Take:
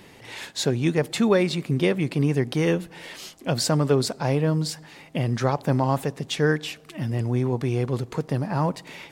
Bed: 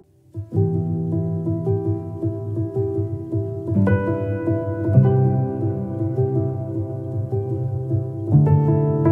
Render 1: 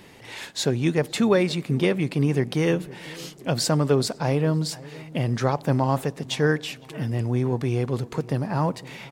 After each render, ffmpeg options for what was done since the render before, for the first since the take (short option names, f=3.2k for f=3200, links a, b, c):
-filter_complex "[0:a]asplit=2[a][b];[b]adelay=510,lowpass=f=1.4k:p=1,volume=-19.5dB,asplit=2[c][d];[d]adelay=510,lowpass=f=1.4k:p=1,volume=0.46,asplit=2[e][f];[f]adelay=510,lowpass=f=1.4k:p=1,volume=0.46,asplit=2[g][h];[h]adelay=510,lowpass=f=1.4k:p=1,volume=0.46[i];[a][c][e][g][i]amix=inputs=5:normalize=0"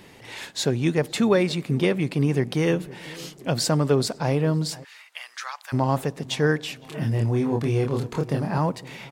-filter_complex "[0:a]asplit=3[a][b][c];[a]afade=t=out:st=4.83:d=0.02[d];[b]highpass=f=1.2k:w=0.5412,highpass=f=1.2k:w=1.3066,afade=t=in:st=4.83:d=0.02,afade=t=out:st=5.72:d=0.02[e];[c]afade=t=in:st=5.72:d=0.02[f];[d][e][f]amix=inputs=3:normalize=0,asettb=1/sr,asplit=3[g][h][i];[g]atrim=end=6.814[j];[h]atrim=start=6.81:end=8.58,asetpts=PTS-STARTPTS,afade=t=in:d=0.004:c=qsin,afade=t=out:st=1.766:d=0.004:c=qsin,asplit=2[k][l];[l]adelay=27,volume=-3dB[m];[k][m]amix=inputs=2:normalize=0,atrim=end_sample=78057[n];[i]atrim=start=8.576[o];[j][n]acrossfade=d=0.004:c1=hsin:c2=qsin[p];[p][o]acrossfade=d=0.004:c1=qsin:c2=hsin"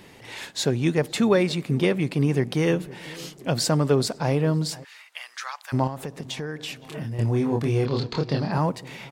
-filter_complex "[0:a]asettb=1/sr,asplit=3[a][b][c];[a]atrim=end=5.874[d];[b]atrim=start=5.87:end=7.19,asetpts=PTS-STARTPTS,afade=t=in:d=0.004:c=qsin,afade=t=out:st=1.316:d=0.004:c=qsin,acompressor=threshold=-28dB:ratio=6:attack=3.2:release=140:knee=1:detection=peak[e];[c]atrim=start=7.186[f];[d][e]acrossfade=d=0.004:c1=hsin:c2=qsin[g];[g][f]acrossfade=d=0.004:c1=qsin:c2=hsin,asettb=1/sr,asplit=3[h][i][j];[h]atrim=end=7.854[k];[i]atrim=start=7.85:end=8.52,asetpts=PTS-STARTPTS,afade=t=in:d=0.004:c=qsin,afade=t=out:st=0.666:d=0.004:c=qsin,lowpass=f=4.4k:t=q:w=5[l];[j]atrim=start=8.516[m];[k][l]acrossfade=d=0.004:c1=hsin:c2=qsin[n];[n][m]acrossfade=d=0.004:c1=qsin:c2=hsin"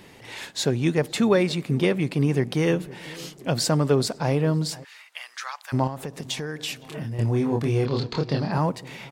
-filter_complex "[0:a]asettb=1/sr,asplit=3[a][b][c];[a]atrim=end=6.134[d];[b]atrim=start=6.13:end=6.83,asetpts=PTS-STARTPTS,afade=t=in:d=0.004:c=qsin,afade=t=out:st=0.696:d=0.004:c=qsin,highshelf=f=3.6k:g=7[e];[c]atrim=start=6.826[f];[d][e]acrossfade=d=0.004:c1=hsin:c2=qsin[g];[g][f]acrossfade=d=0.004:c1=qsin:c2=hsin"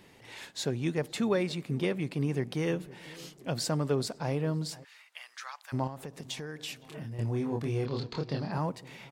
-af "volume=-8.5dB"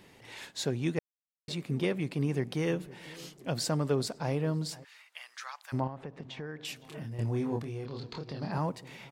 -filter_complex "[0:a]asettb=1/sr,asplit=3[a][b][c];[a]atrim=end=5.804[d];[b]atrim=start=5.8:end=6.65,asetpts=PTS-STARTPTS,afade=t=in:d=0.004:c=qsin,afade=t=out:st=0.846:d=0.004:c=qsin,lowpass=2.5k[e];[c]atrim=start=6.646[f];[d][e]acrossfade=d=0.004:c1=hsin:c2=qsin[g];[g][f]acrossfade=d=0.004:c1=qsin:c2=hsin,asettb=1/sr,asplit=3[h][i][j];[h]atrim=end=7.614[k];[i]atrim=start=7.61:end=8.42,asetpts=PTS-STARTPTS,afade=t=in:d=0.004:c=qsin,afade=t=out:st=0.806:d=0.004:c=qsin,acompressor=threshold=-38dB:ratio=2.5:attack=3.2:release=140:knee=1:detection=peak[l];[j]atrim=start=8.416[m];[k][l]acrossfade=d=0.004:c1=hsin:c2=qsin[n];[n][m]acrossfade=d=0.004:c1=qsin:c2=hsin,asplit=3[o][p][q];[o]atrim=end=0.99,asetpts=PTS-STARTPTS,afade=t=out:st=0.986:d=0.004:c=hsin[r];[p]atrim=start=0.99:end=1.48,asetpts=PTS-STARTPTS,volume=0[s];[q]atrim=start=1.48,asetpts=PTS-STARTPTS,afade=t=in:d=0.004:c=hsin[t];[r][s][t]concat=n=3:v=0:a=1"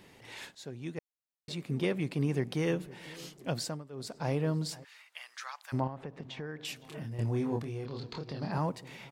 -filter_complex "[0:a]asplit=4[a][b][c][d];[a]atrim=end=0.55,asetpts=PTS-STARTPTS,afade=t=out:st=0.546:d=0.004:c=hsin:silence=0.177828[e];[b]atrim=start=0.55:end=3.84,asetpts=PTS-STARTPTS,afade=t=in:d=1.43:silence=0.177828,afade=t=out:st=2.94:d=0.35:silence=0.105925[f];[c]atrim=start=3.84:end=3.92,asetpts=PTS-STARTPTS,volume=-19.5dB[g];[d]atrim=start=3.92,asetpts=PTS-STARTPTS,afade=t=in:d=0.35:silence=0.105925[h];[e][f][g][h]concat=n=4:v=0:a=1"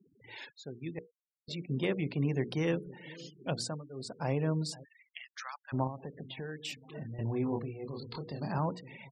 -af "bandreject=f=60:t=h:w=6,bandreject=f=120:t=h:w=6,bandreject=f=180:t=h:w=6,bandreject=f=240:t=h:w=6,bandreject=f=300:t=h:w=6,bandreject=f=360:t=h:w=6,bandreject=f=420:t=h:w=6,bandreject=f=480:t=h:w=6,afftfilt=real='re*gte(hypot(re,im),0.00631)':imag='im*gte(hypot(re,im),0.00631)':win_size=1024:overlap=0.75"